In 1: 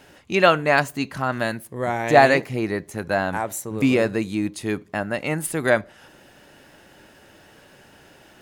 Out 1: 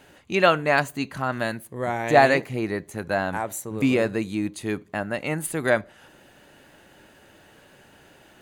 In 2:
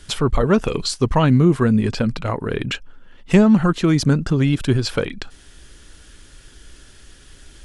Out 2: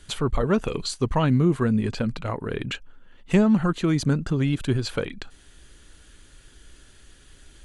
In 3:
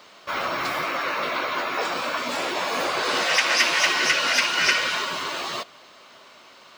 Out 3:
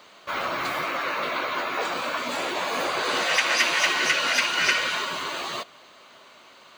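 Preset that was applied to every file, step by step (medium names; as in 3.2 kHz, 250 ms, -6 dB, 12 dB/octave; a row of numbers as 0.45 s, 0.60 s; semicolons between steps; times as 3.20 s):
band-stop 5.3 kHz, Q 7.9; normalise loudness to -24 LUFS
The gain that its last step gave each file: -2.5 dB, -5.5 dB, -1.5 dB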